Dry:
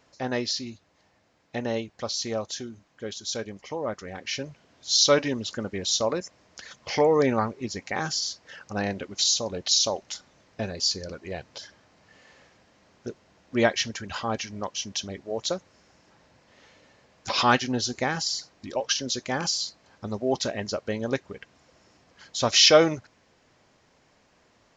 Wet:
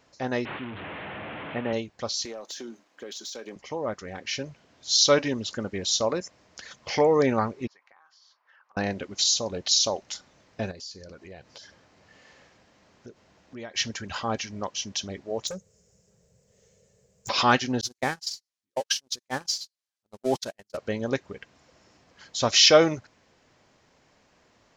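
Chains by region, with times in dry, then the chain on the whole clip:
0:00.45–0:01.73: linear delta modulator 16 kbit/s, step −31 dBFS + high-pass filter 96 Hz
0:02.25–0:03.56: high-pass filter 250 Hz 24 dB per octave + downward compressor 16 to 1, threshold −36 dBFS + leveller curve on the samples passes 1
0:07.67–0:08.77: four-pole ladder band-pass 1,200 Hz, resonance 55% + downward compressor 10 to 1, threshold −54 dBFS
0:10.71–0:13.75: downward compressor 2.5 to 1, threshold −45 dBFS + single-tap delay 693 ms −23 dB
0:15.47–0:17.29: drawn EQ curve 200 Hz 0 dB, 290 Hz −29 dB, 430 Hz +3 dB, 880 Hz −21 dB, 4,200 Hz −14 dB, 7,500 Hz +7 dB + hard clipping −31.5 dBFS
0:17.81–0:20.77: spike at every zero crossing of −25 dBFS + low-pass filter 7,700 Hz + noise gate −27 dBFS, range −53 dB
whole clip: no processing

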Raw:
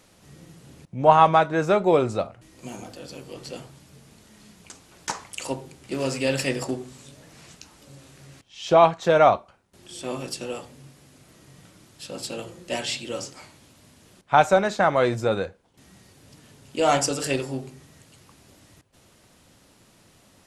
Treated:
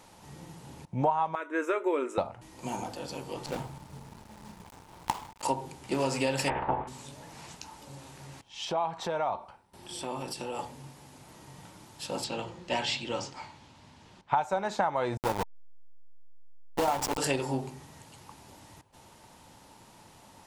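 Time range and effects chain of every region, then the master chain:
0:01.35–0:02.18: linear-phase brick-wall high-pass 250 Hz + phaser with its sweep stopped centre 1,900 Hz, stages 4
0:03.46–0:05.43: gap after every zero crossing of 0.24 ms + low-shelf EQ 200 Hz +7.5 dB
0:06.47–0:06.87: ceiling on every frequency bin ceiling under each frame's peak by 25 dB + Gaussian smoothing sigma 4.6 samples + double-tracking delay 14 ms −8.5 dB
0:08.64–0:10.59: notch filter 6,700 Hz, Q 7.4 + downward compressor 3 to 1, threshold −35 dBFS
0:12.24–0:14.37: low-pass filter 4,900 Hz + parametric band 520 Hz −4 dB 2.3 octaves
0:15.17–0:17.18: hold until the input has moved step −20.5 dBFS + saturating transformer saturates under 450 Hz
whole clip: parametric band 890 Hz +14 dB 0.36 octaves; downward compressor 12 to 1, threshold −24 dBFS

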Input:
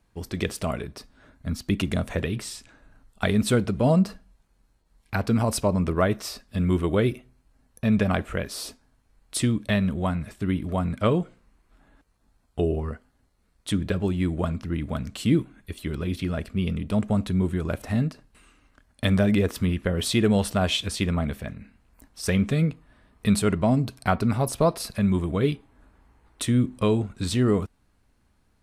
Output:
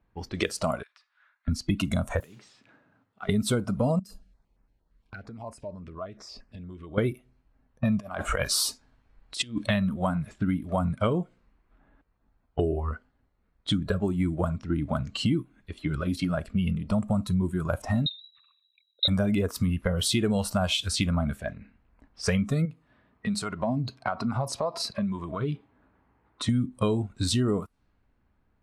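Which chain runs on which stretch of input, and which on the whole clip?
0:00.83–0:01.48: high-pass filter 1,200 Hz 24 dB per octave + downward compressor 4 to 1, threshold −49 dBFS
0:02.20–0:03.29: high-pass filter 120 Hz 24 dB per octave + downward compressor 4 to 1, threshold −44 dBFS + noise that follows the level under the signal 11 dB
0:03.99–0:06.98: high-shelf EQ 4,300 Hz +8 dB + downward compressor 12 to 1, threshold −35 dBFS + notch on a step sequencer 8.7 Hz 800–3,600 Hz
0:08.00–0:09.69: high-shelf EQ 2,200 Hz +5.5 dB + compressor whose output falls as the input rises −28 dBFS, ratio −0.5
0:18.06–0:19.08: spectral envelope exaggerated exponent 3 + parametric band 240 Hz +6 dB 0.42 octaves + voice inversion scrambler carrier 3,900 Hz
0:22.65–0:26.49: high-pass filter 92 Hz + downward compressor 4 to 1, threshold −28 dBFS
whole clip: low-pass that shuts in the quiet parts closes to 2,200 Hz, open at −22 dBFS; noise reduction from a noise print of the clip's start 12 dB; downward compressor 4 to 1, threshold −33 dBFS; level +8.5 dB

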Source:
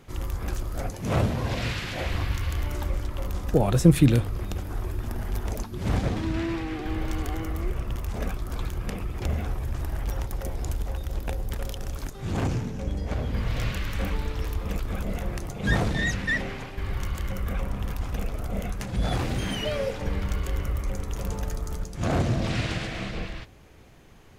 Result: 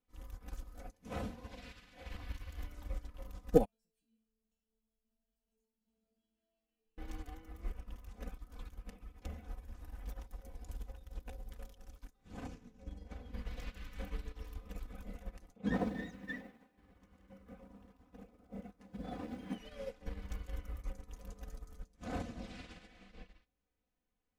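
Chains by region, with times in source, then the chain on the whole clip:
0:03.65–0:06.98: downward compressor 3 to 1, threshold −24 dBFS + stiff-string resonator 220 Hz, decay 0.67 s, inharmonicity 0.002
0:15.56–0:19.58: high-pass filter 210 Hz + spectral tilt −3.5 dB per octave + feedback echo at a low word length 98 ms, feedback 80%, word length 7 bits, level −15 dB
whole clip: comb filter 4 ms, depth 90%; expander for the loud parts 2.5 to 1, over −35 dBFS; level −5.5 dB

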